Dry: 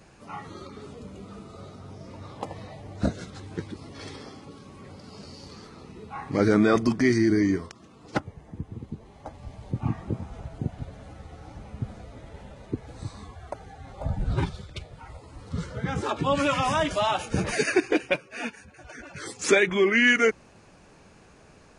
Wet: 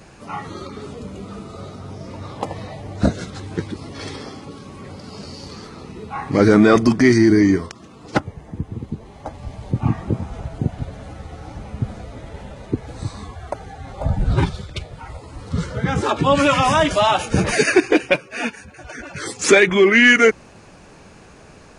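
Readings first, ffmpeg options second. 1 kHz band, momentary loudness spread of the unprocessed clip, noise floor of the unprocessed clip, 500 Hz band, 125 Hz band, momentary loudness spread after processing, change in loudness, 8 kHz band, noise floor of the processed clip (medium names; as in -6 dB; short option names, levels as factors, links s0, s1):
+8.5 dB, 24 LU, -54 dBFS, +8.0 dB, +8.5 dB, 23 LU, +8.0 dB, +8.5 dB, -45 dBFS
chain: -af "acontrast=73,volume=1.26"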